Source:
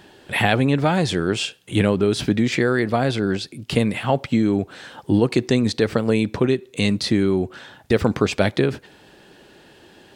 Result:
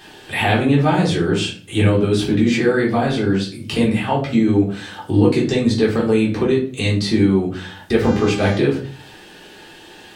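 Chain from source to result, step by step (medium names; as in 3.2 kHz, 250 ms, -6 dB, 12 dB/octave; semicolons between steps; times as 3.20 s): simulated room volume 280 m³, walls furnished, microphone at 3.7 m; 8.02–8.57 s: mains buzz 400 Hz, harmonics 18, -25 dBFS -6 dB/octave; tape noise reduction on one side only encoder only; trim -5.5 dB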